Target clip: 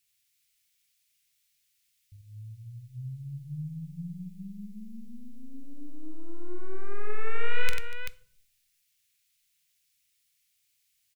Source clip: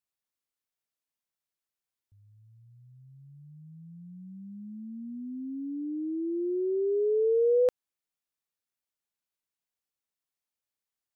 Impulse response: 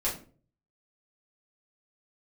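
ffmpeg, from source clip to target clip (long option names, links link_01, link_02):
-filter_complex "[0:a]aeval=exprs='(tanh(17.8*val(0)+0.35)-tanh(0.35))/17.8':channel_layout=same,firequalizer=gain_entry='entry(150,0);entry(250,-25);entry(400,-27);entry(740,-27);entry(1200,-11);entry(2200,6)':delay=0.05:min_phase=1,aecho=1:1:45|93|240|386:0.355|0.531|0.133|0.422,asplit=2[link_01][link_02];[1:a]atrim=start_sample=2205,asetrate=29547,aresample=44100[link_03];[link_02][link_03]afir=irnorm=-1:irlink=0,volume=-22.5dB[link_04];[link_01][link_04]amix=inputs=2:normalize=0,volume=11dB"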